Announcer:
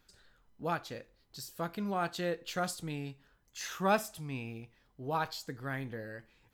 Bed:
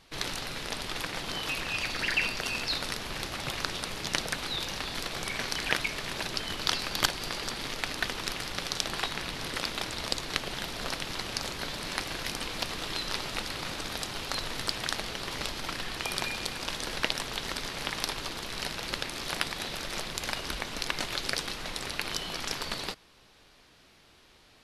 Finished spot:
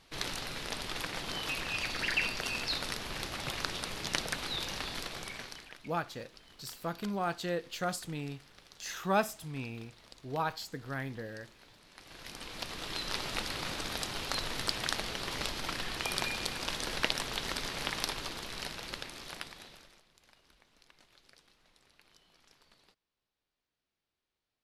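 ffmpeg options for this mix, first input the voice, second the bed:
-filter_complex "[0:a]adelay=5250,volume=0dB[a];[1:a]volume=19dB,afade=t=out:st=4.85:d=0.86:silence=0.0944061,afade=t=in:st=11.95:d=1.39:silence=0.0794328,afade=t=out:st=17.83:d=2.17:silence=0.0354813[b];[a][b]amix=inputs=2:normalize=0"

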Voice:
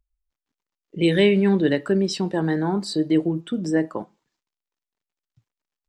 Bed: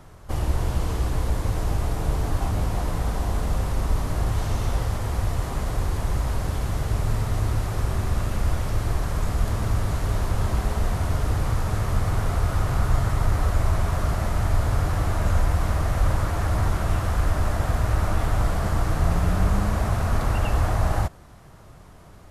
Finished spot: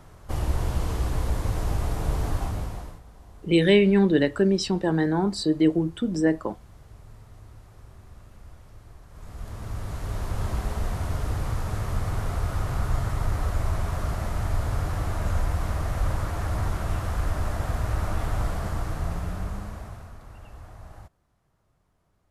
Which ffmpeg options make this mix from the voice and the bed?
-filter_complex "[0:a]adelay=2500,volume=-0.5dB[a];[1:a]volume=17dB,afade=t=out:st=2.29:d=0.72:silence=0.0841395,afade=t=in:st=9.09:d=1.37:silence=0.112202,afade=t=out:st=18.42:d=1.74:silence=0.125893[b];[a][b]amix=inputs=2:normalize=0"

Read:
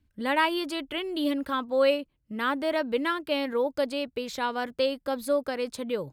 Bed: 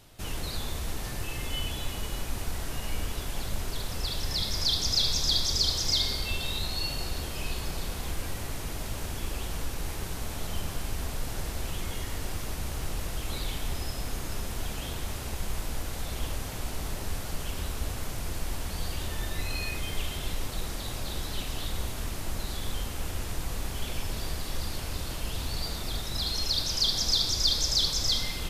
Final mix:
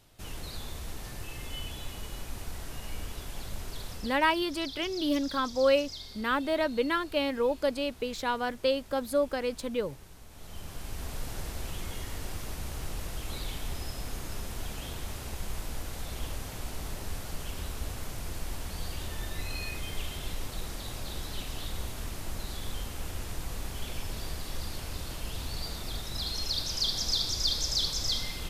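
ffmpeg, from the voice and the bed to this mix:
-filter_complex "[0:a]adelay=3850,volume=-1dB[a];[1:a]volume=7dB,afade=t=out:st=3.9:d=0.3:silence=0.298538,afade=t=in:st=10.3:d=0.87:silence=0.223872[b];[a][b]amix=inputs=2:normalize=0"

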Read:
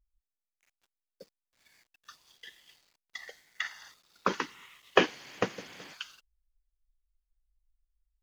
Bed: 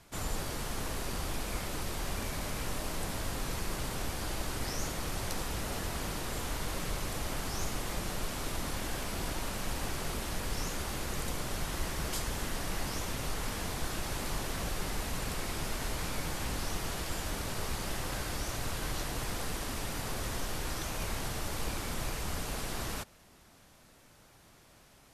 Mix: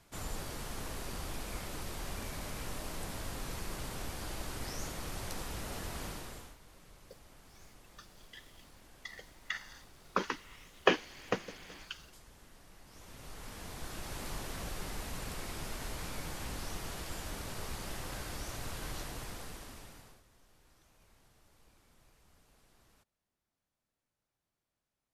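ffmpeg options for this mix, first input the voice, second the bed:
-filter_complex "[0:a]adelay=5900,volume=-3.5dB[a];[1:a]volume=12dB,afade=t=out:st=6.05:d=0.51:silence=0.133352,afade=t=in:st=12.85:d=1.4:silence=0.141254,afade=t=out:st=18.96:d=1.27:silence=0.0595662[b];[a][b]amix=inputs=2:normalize=0"

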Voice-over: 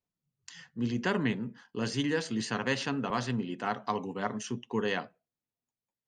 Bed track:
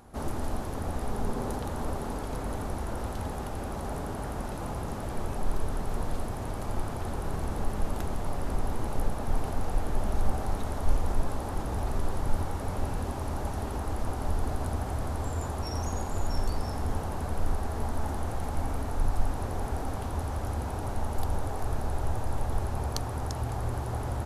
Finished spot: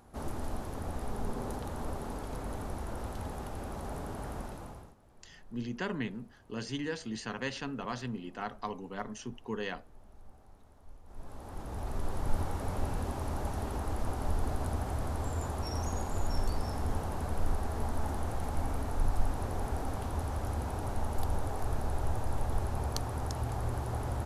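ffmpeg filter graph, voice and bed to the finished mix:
-filter_complex "[0:a]adelay=4750,volume=-6dB[a];[1:a]volume=20dB,afade=t=out:st=4.36:d=0.59:silence=0.0749894,afade=t=in:st=11.05:d=1.37:silence=0.0562341[b];[a][b]amix=inputs=2:normalize=0"

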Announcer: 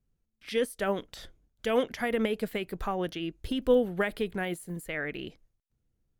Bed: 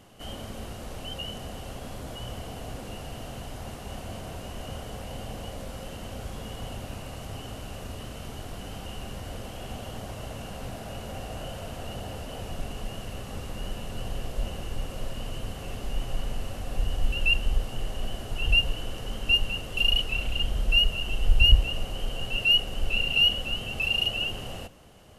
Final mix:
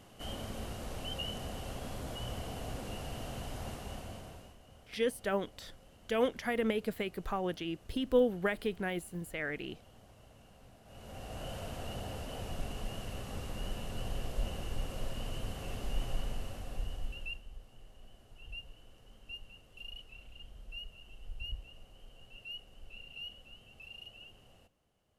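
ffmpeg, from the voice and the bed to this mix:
-filter_complex "[0:a]adelay=4450,volume=-3.5dB[a];[1:a]volume=13.5dB,afade=t=out:st=3.67:d=0.91:silence=0.125893,afade=t=in:st=10.84:d=0.69:silence=0.149624,afade=t=out:st=16.05:d=1.38:silence=0.105925[b];[a][b]amix=inputs=2:normalize=0"

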